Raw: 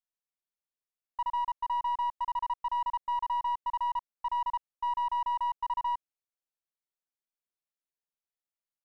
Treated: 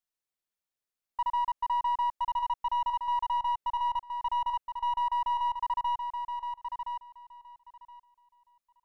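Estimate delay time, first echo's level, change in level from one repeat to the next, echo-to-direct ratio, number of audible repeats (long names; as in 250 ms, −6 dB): 1,020 ms, −6.5 dB, −15.5 dB, −6.5 dB, 2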